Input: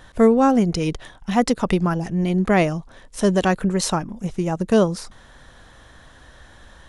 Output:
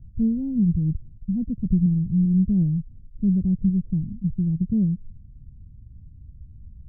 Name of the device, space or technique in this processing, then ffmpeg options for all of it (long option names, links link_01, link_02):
the neighbour's flat through the wall: -af "lowpass=frequency=180:width=0.5412,lowpass=frequency=180:width=1.3066,equalizer=frequency=88:width_type=o:width=0.77:gain=5.5,volume=4.5dB"